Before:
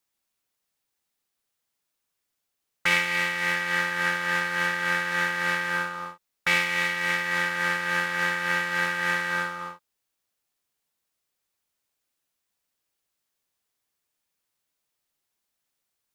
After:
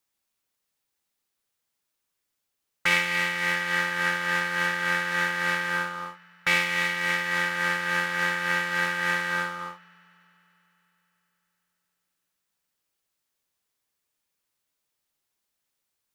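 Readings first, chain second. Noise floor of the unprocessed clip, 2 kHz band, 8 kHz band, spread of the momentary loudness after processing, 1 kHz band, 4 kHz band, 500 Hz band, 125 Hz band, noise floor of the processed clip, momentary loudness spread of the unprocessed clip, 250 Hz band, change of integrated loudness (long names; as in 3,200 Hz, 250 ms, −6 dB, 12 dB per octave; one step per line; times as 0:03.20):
−81 dBFS, 0.0 dB, 0.0 dB, 6 LU, 0.0 dB, +0.5 dB, 0.0 dB, +0.5 dB, −81 dBFS, 6 LU, +0.5 dB, 0.0 dB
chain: notch filter 710 Hz, Q 22
on a send: delay with a low-pass on its return 97 ms, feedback 84%, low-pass 3,800 Hz, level −23.5 dB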